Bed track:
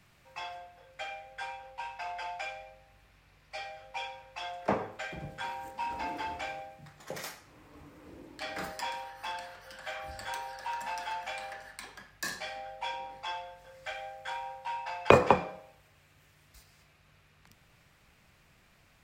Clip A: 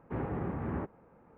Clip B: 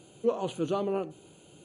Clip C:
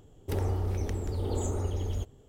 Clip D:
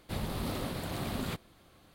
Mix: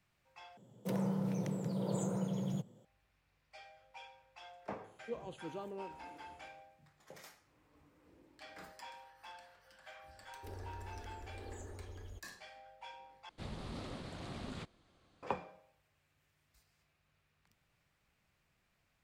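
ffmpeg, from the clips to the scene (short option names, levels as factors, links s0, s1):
-filter_complex "[3:a]asplit=2[s0][s1];[0:a]volume=0.188[s2];[s0]afreqshift=100[s3];[2:a]aresample=32000,aresample=44100[s4];[s1]equalizer=f=150:t=o:w=0.77:g=-11[s5];[4:a]lowpass=f=8100:w=0.5412,lowpass=f=8100:w=1.3066[s6];[s2]asplit=3[s7][s8][s9];[s7]atrim=end=0.574[s10];[s3]atrim=end=2.28,asetpts=PTS-STARTPTS,volume=0.501[s11];[s8]atrim=start=2.846:end=13.294[s12];[s6]atrim=end=1.94,asetpts=PTS-STARTPTS,volume=0.335[s13];[s9]atrim=start=15.226[s14];[s4]atrim=end=1.64,asetpts=PTS-STARTPTS,volume=0.168,afade=t=in:d=0.004:c=hsin,afade=t=out:st=1.636:d=0.004:c=hsin,adelay=4840[s15];[s5]atrim=end=2.28,asetpts=PTS-STARTPTS,volume=0.15,afade=t=in:d=0.004:c=hsin,afade=t=out:st=2.276:d=0.004:c=hsin,adelay=10150[s16];[s10][s11]acrossfade=d=0.004:c1=hsin:c2=hsin[s17];[s17][s12]acrossfade=d=0.004:c1=hsin:c2=hsin[s18];[s18][s13]acrossfade=d=0.004:c1=hsin:c2=hsin[s19];[s19][s14]acrossfade=d=0.004:c1=hsin:c2=hsin[s20];[s20][s15][s16]amix=inputs=3:normalize=0"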